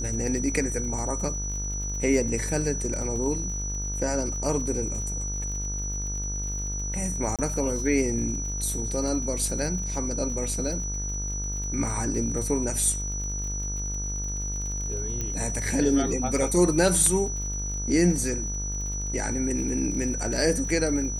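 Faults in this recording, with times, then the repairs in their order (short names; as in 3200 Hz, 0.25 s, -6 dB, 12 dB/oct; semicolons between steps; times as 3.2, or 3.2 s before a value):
buzz 50 Hz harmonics 35 -32 dBFS
crackle 48/s -35 dBFS
tone 5900 Hz -32 dBFS
7.36–7.39 gap 27 ms
15.21 pop -17 dBFS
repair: de-click; de-hum 50 Hz, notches 35; notch 5900 Hz, Q 30; interpolate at 7.36, 27 ms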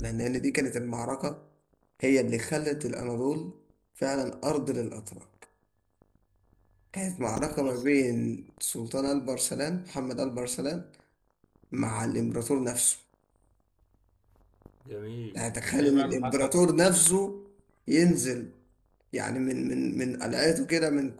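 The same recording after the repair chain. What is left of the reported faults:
none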